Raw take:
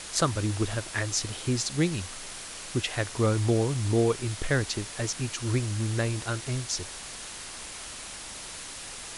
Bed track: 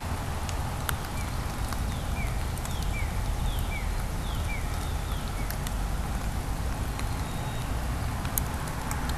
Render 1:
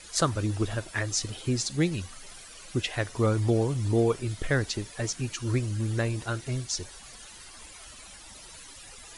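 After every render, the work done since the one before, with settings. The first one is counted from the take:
broadband denoise 13 dB, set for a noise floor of −41 dBFS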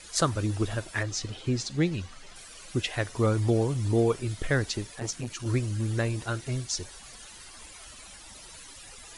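0:01.03–0:02.36: high-frequency loss of the air 73 metres
0:04.86–0:05.46: saturating transformer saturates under 380 Hz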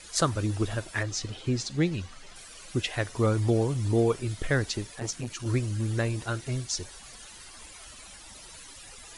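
no processing that can be heard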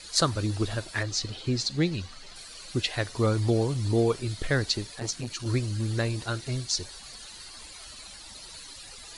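parametric band 4,300 Hz +10 dB 0.38 octaves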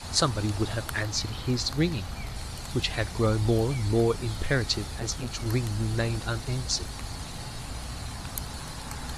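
mix in bed track −6.5 dB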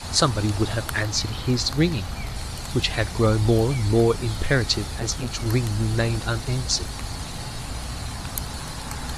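level +5 dB
brickwall limiter −3 dBFS, peak gain reduction 1.5 dB

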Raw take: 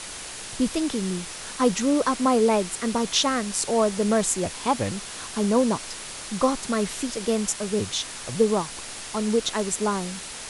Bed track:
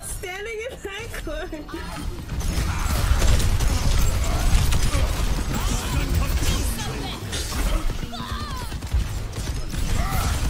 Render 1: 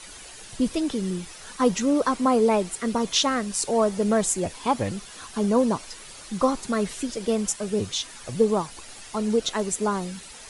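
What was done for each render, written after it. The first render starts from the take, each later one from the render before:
broadband denoise 10 dB, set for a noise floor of −37 dBFS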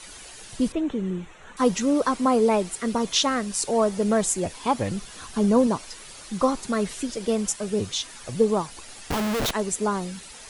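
0:00.72–0:01.57: moving average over 9 samples
0:04.91–0:05.67: low-shelf EQ 200 Hz +6.5 dB
0:09.10–0:09.51: comparator with hysteresis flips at −37 dBFS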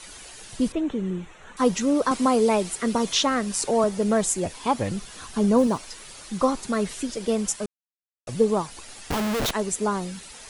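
0:02.11–0:03.84: multiband upward and downward compressor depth 40%
0:05.58–0:06.15: one scale factor per block 7 bits
0:07.66–0:08.27: silence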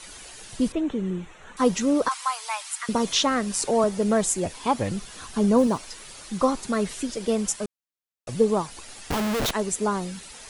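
0:02.08–0:02.89: Butterworth high-pass 900 Hz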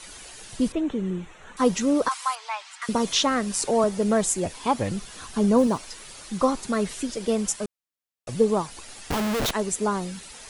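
0:02.35–0:02.82: high-frequency loss of the air 140 metres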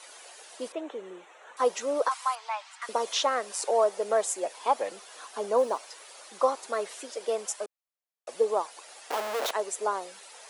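high-pass filter 540 Hz 24 dB per octave
tilt shelving filter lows +6.5 dB, about 780 Hz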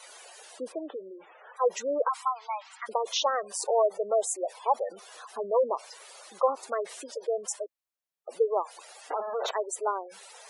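gate on every frequency bin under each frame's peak −15 dB strong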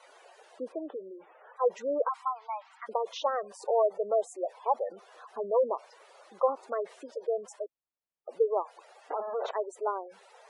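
low-pass filter 1,000 Hz 6 dB per octave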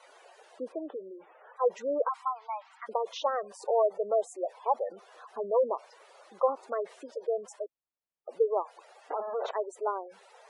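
no processing that can be heard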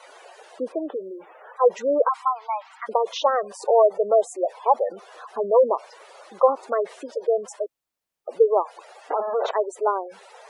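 level +9 dB

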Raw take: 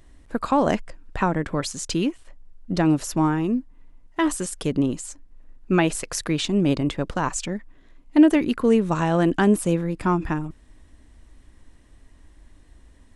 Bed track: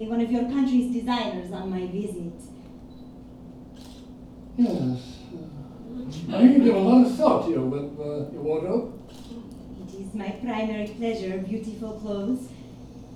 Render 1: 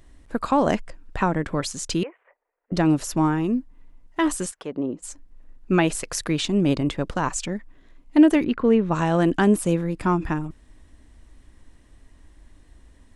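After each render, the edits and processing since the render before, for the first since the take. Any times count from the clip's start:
0:02.03–0:02.72: elliptic band-pass filter 450–2,200 Hz
0:04.50–0:05.02: resonant band-pass 1,600 Hz → 300 Hz, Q 1
0:08.44–0:08.94: low-pass filter 3,000 Hz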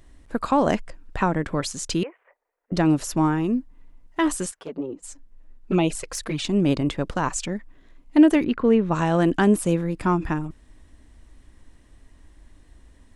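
0:04.59–0:06.45: flanger swept by the level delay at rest 11.4 ms, full sweep at −15 dBFS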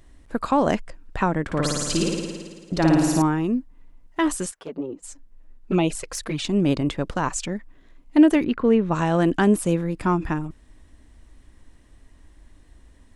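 0:01.44–0:03.22: flutter between parallel walls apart 9.5 metres, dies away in 1.5 s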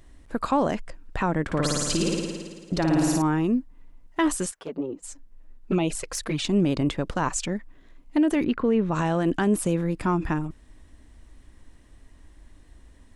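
brickwall limiter −14 dBFS, peak gain reduction 8 dB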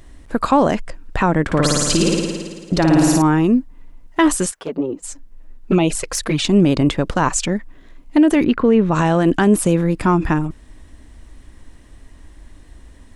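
level +8.5 dB

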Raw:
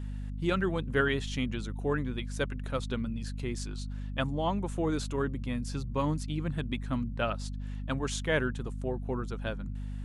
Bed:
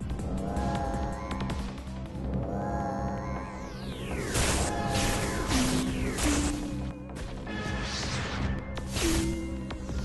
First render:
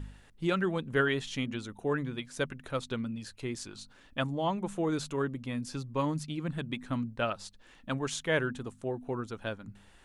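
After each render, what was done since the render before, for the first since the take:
hum removal 50 Hz, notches 5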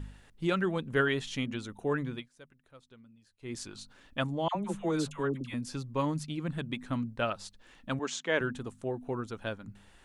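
0:02.14–0:03.55: duck −21.5 dB, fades 0.15 s
0:04.48–0:05.54: all-pass dispersion lows, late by 72 ms, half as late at 1,000 Hz
0:07.99–0:08.41: elliptic band-pass filter 200–7,200 Hz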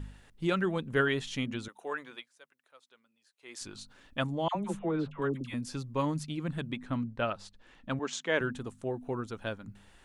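0:01.68–0:03.61: high-pass filter 630 Hz
0:04.79–0:05.22: high-frequency loss of the air 400 metres
0:06.72–0:08.13: low-pass filter 3,600 Hz 6 dB per octave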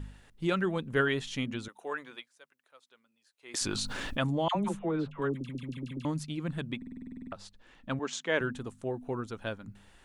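0:03.54–0:04.69: envelope flattener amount 70%
0:05.35: stutter in place 0.14 s, 5 plays
0:06.77: stutter in place 0.05 s, 11 plays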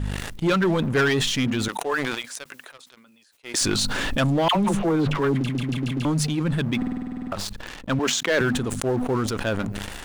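leveller curve on the samples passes 3
level that may fall only so fast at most 28 dB per second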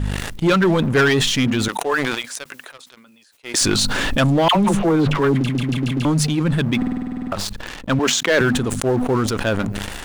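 level +5 dB
brickwall limiter −2 dBFS, peak gain reduction 1 dB

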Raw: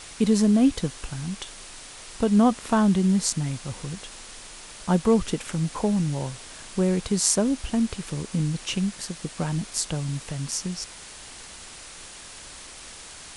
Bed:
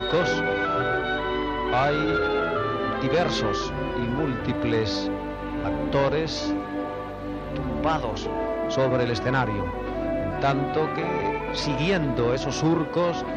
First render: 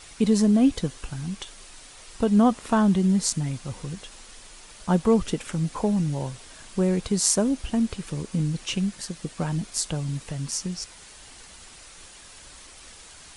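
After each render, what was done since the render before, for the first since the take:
broadband denoise 6 dB, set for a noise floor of −43 dBFS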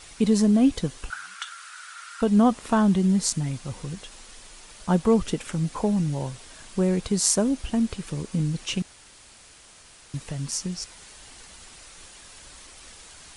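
0:01.10–0:02.22: high-pass with resonance 1,400 Hz, resonance Q 12
0:08.82–0:10.14: fill with room tone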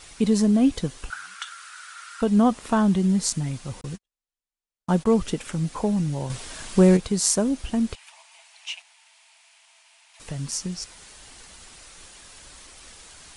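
0:03.81–0:05.18: noise gate −35 dBFS, range −51 dB
0:06.30–0:06.97: clip gain +7.5 dB
0:07.95–0:10.20: Chebyshev high-pass with heavy ripple 640 Hz, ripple 9 dB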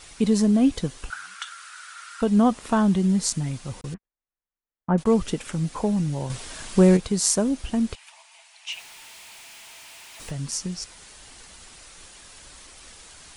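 0:03.94–0:04.98: inverse Chebyshev low-pass filter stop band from 6,400 Hz, stop band 60 dB
0:08.72–0:10.31: converter with a step at zero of −41.5 dBFS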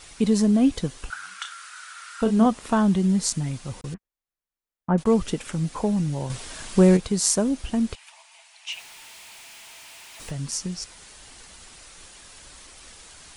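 0:01.20–0:02.46: double-tracking delay 32 ms −7.5 dB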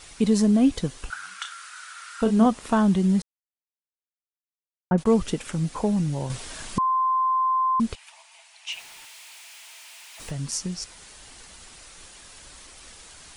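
0:03.22–0:04.91: silence
0:06.78–0:07.80: beep over 1,040 Hz −19 dBFS
0:09.05–0:10.18: high-pass filter 1,100 Hz 6 dB per octave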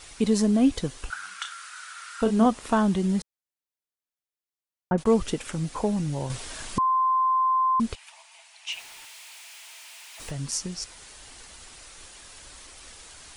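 parametric band 180 Hz −4.5 dB 0.63 octaves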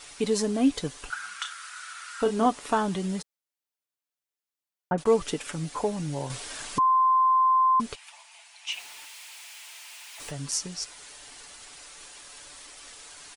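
low-shelf EQ 170 Hz −11.5 dB
comb filter 6.9 ms, depth 40%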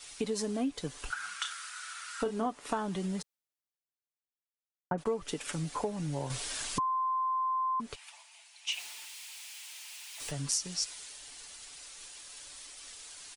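downward compressor 6 to 1, threshold −31 dBFS, peak gain reduction 14 dB
multiband upward and downward expander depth 40%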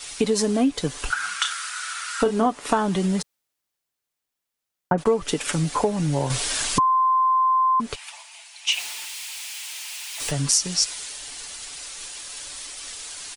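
level +12 dB
brickwall limiter −2 dBFS, peak gain reduction 1.5 dB

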